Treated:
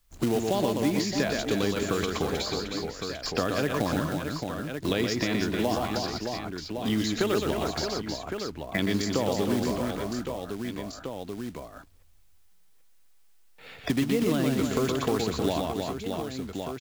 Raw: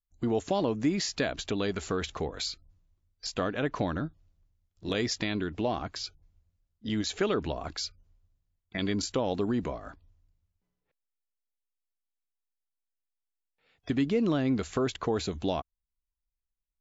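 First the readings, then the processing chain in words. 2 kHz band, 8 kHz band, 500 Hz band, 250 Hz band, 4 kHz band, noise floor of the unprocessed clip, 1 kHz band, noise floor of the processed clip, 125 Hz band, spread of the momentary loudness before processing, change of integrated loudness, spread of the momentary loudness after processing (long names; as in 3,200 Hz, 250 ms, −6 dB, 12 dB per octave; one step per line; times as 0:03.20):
+5.0 dB, can't be measured, +4.0 dB, +4.0 dB, +3.5 dB, below −85 dBFS, +4.5 dB, −55 dBFS, +4.0 dB, 11 LU, +2.5 dB, 9 LU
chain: floating-point word with a short mantissa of 2 bits
reverse bouncing-ball delay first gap 120 ms, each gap 1.6×, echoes 5
multiband upward and downward compressor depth 70%
level +1.5 dB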